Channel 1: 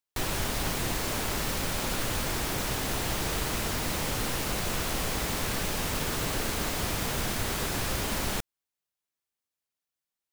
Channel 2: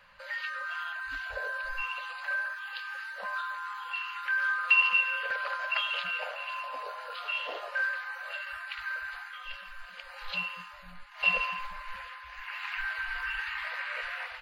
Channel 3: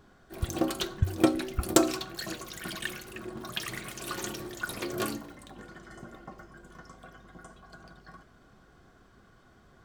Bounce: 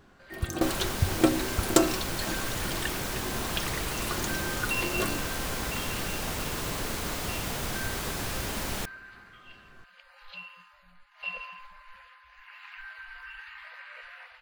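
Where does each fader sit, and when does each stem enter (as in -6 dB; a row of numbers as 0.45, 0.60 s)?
-2.5, -10.0, +0.5 dB; 0.45, 0.00, 0.00 s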